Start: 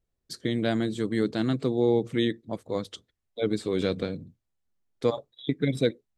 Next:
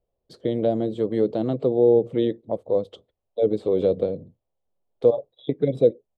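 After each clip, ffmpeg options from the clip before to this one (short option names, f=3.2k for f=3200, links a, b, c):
-filter_complex "[0:a]firequalizer=gain_entry='entry(280,0);entry(530,14);entry(1600,-10);entry(3100,-3);entry(5700,-16)':delay=0.05:min_phase=1,acrossover=split=560|4900[a][b][c];[b]acompressor=threshold=-32dB:ratio=6[d];[a][d][c]amix=inputs=3:normalize=0"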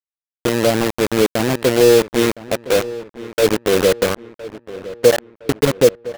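-filter_complex "[0:a]acrusher=bits=3:mix=0:aa=0.000001,asplit=2[a][b];[b]adelay=1013,lowpass=f=2.6k:p=1,volume=-16.5dB,asplit=2[c][d];[d]adelay=1013,lowpass=f=2.6k:p=1,volume=0.47,asplit=2[e][f];[f]adelay=1013,lowpass=f=2.6k:p=1,volume=0.47,asplit=2[g][h];[h]adelay=1013,lowpass=f=2.6k:p=1,volume=0.47[i];[a][c][e][g][i]amix=inputs=5:normalize=0,volume=5.5dB"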